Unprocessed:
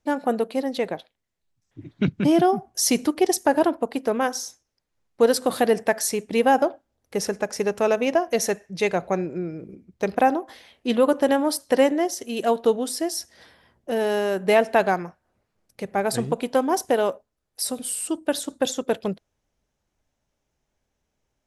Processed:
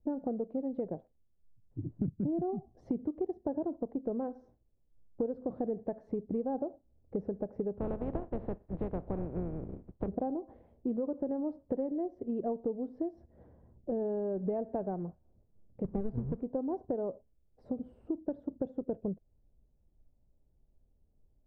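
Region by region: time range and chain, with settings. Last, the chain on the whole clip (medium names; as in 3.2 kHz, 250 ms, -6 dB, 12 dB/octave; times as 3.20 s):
7.79–10.07 s: spectral contrast reduction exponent 0.3 + inverse Chebyshev low-pass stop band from 7.8 kHz
15.84–16.43 s: square wave that keeps the level + peaking EQ 650 Hz -6.5 dB 0.8 oct
whole clip: Chebyshev low-pass 590 Hz, order 2; tilt EQ -4 dB/octave; compression 6:1, threshold -25 dBFS; trim -6.5 dB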